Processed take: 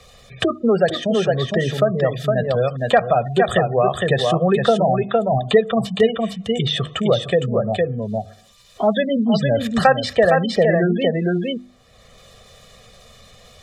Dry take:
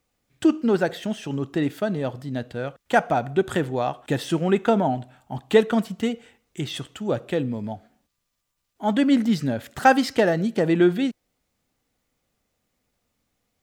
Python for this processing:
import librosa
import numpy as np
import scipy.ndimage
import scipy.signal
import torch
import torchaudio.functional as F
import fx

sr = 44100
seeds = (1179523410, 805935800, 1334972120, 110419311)

p1 = fx.spec_gate(x, sr, threshold_db=-25, keep='strong')
p2 = scipy.signal.sosfilt(scipy.signal.butter(2, 10000.0, 'lowpass', fs=sr, output='sos'), p1)
p3 = fx.peak_eq(p2, sr, hz=3700.0, db=8.0, octaves=0.37)
p4 = fx.hum_notches(p3, sr, base_hz=50, count=7)
p5 = p4 + 0.91 * np.pad(p4, (int(1.7 * sr / 1000.0), 0))[:len(p4)]
p6 = p5 + fx.echo_single(p5, sr, ms=460, db=-5.0, dry=0)
p7 = fx.band_squash(p6, sr, depth_pct=70)
y = p7 * librosa.db_to_amplitude(3.5)